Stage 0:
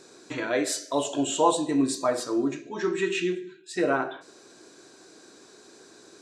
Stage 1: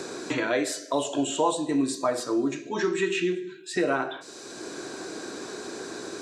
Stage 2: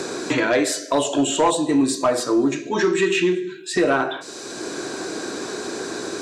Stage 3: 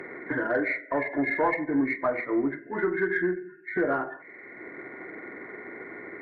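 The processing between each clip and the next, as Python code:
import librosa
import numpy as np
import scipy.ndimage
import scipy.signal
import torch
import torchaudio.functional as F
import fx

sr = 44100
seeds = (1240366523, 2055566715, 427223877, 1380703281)

y1 = fx.band_squash(x, sr, depth_pct=70)
y2 = fx.fold_sine(y1, sr, drive_db=4, ceiling_db=-11.0)
y3 = fx.freq_compress(y2, sr, knee_hz=1400.0, ratio=4.0)
y3 = fx.cheby_harmonics(y3, sr, harmonics=(4,), levels_db=(-34,), full_scale_db=-7.0)
y3 = fx.upward_expand(y3, sr, threshold_db=-30.0, expansion=1.5)
y3 = F.gain(torch.from_numpy(y3), -6.5).numpy()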